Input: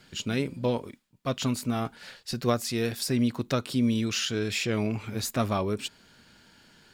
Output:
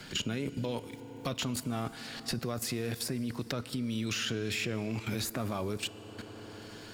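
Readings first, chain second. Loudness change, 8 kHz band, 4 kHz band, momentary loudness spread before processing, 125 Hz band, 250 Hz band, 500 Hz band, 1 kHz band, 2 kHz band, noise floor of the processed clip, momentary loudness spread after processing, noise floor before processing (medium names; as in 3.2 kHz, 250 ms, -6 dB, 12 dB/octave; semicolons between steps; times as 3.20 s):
-6.0 dB, -3.5 dB, -3.0 dB, 8 LU, -5.5 dB, -7.0 dB, -7.5 dB, -7.5 dB, -3.0 dB, -48 dBFS, 13 LU, -59 dBFS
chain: dynamic bell 5.2 kHz, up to -5 dB, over -43 dBFS, Q 0.75; in parallel at -2 dB: peak limiter -23 dBFS, peak gain reduction 11 dB; on the sum: level held to a coarse grid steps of 17 dB; FDN reverb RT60 3.5 s, high-frequency decay 0.5×, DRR 15 dB; three bands compressed up and down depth 70%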